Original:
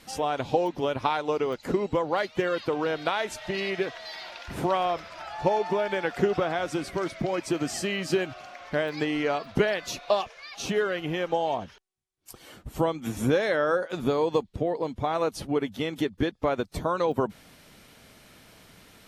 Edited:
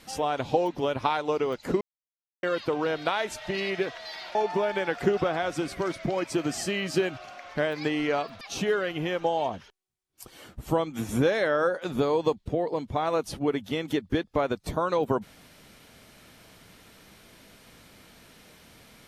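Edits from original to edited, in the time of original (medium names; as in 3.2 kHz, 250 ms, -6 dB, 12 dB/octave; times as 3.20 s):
1.81–2.43 s: mute
4.35–5.51 s: delete
9.57–10.49 s: delete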